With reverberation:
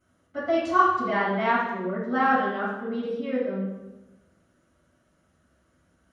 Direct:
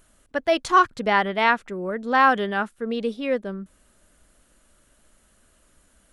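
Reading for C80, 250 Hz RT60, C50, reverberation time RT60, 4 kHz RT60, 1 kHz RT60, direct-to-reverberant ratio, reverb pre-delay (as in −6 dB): 3.5 dB, 1.5 s, 0.5 dB, 1.1 s, 0.80 s, 0.95 s, −12.5 dB, 3 ms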